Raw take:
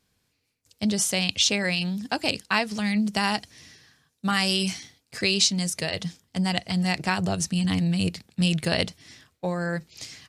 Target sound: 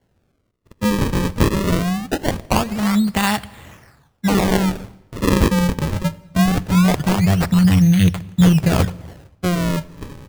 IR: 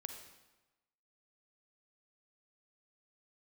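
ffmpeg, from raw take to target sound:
-filter_complex "[0:a]asubboost=boost=4:cutoff=150,acrusher=samples=35:mix=1:aa=0.000001:lfo=1:lforange=56:lforate=0.22,asplit=2[link_01][link_02];[1:a]atrim=start_sample=2205,lowshelf=frequency=160:gain=10[link_03];[link_02][link_03]afir=irnorm=-1:irlink=0,volume=-9.5dB[link_04];[link_01][link_04]amix=inputs=2:normalize=0,volume=4.5dB"

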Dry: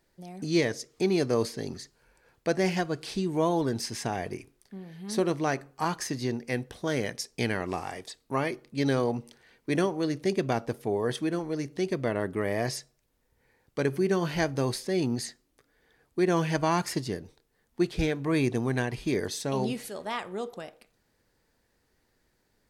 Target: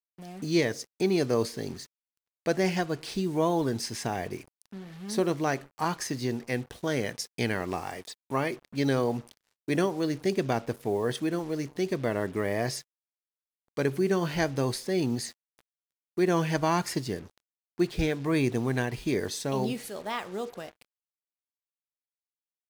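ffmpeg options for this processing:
ffmpeg -i in.wav -af "acrusher=bits=7:mix=0:aa=0.5" out.wav

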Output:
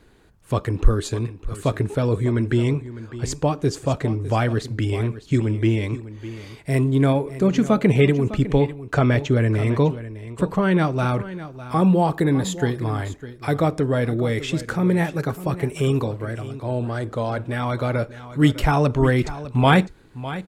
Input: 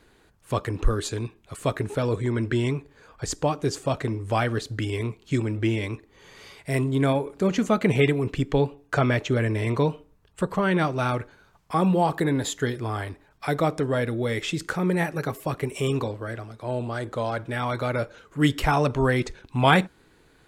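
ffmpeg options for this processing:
ffmpeg -i in.wav -filter_complex "[0:a]lowshelf=frequency=400:gain=6.5,asplit=2[link_01][link_02];[link_02]aecho=0:1:604:0.188[link_03];[link_01][link_03]amix=inputs=2:normalize=0" out.wav

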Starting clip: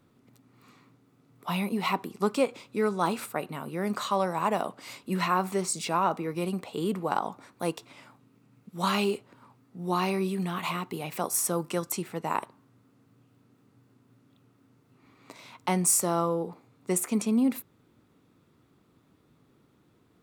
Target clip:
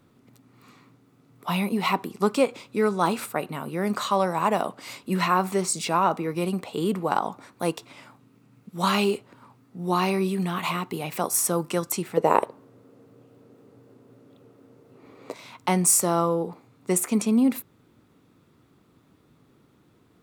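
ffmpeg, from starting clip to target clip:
ffmpeg -i in.wav -filter_complex "[0:a]asettb=1/sr,asplit=3[link_01][link_02][link_03];[link_01]atrim=end=12.174[link_04];[link_02]atrim=start=12.17:end=15.34,asetpts=PTS-STARTPTS,afade=type=in:duration=0.004:curve=qsin,afade=type=out:start_time=3.166:duration=0.004:curve=qsin,equalizer=frequency=490:width_type=o:width=1.1:gain=15[link_05];[link_03]atrim=start=15.336[link_06];[link_04][link_05]acrossfade=duration=0.004:curve1=hsin:curve2=qsin[link_07];[link_07][link_06]acrossfade=duration=0.004:curve1=qsin:curve2=hsin,volume=4dB" out.wav

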